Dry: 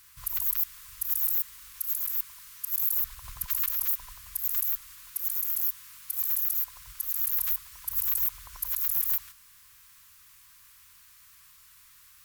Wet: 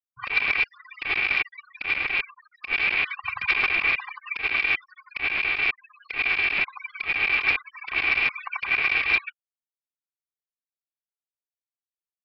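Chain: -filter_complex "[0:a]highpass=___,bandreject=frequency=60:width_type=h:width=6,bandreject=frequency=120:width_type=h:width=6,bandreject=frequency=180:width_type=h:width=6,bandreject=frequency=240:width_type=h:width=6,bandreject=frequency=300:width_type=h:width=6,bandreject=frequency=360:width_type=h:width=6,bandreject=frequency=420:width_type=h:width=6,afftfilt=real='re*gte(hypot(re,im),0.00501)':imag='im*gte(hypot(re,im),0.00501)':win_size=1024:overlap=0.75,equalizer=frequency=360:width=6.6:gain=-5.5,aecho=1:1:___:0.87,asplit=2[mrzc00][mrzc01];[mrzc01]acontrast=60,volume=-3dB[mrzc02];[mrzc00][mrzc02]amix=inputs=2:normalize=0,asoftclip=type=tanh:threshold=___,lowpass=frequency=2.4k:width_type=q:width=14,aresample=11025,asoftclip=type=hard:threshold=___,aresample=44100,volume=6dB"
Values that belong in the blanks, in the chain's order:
210, 2.6, -15.5dB, -20dB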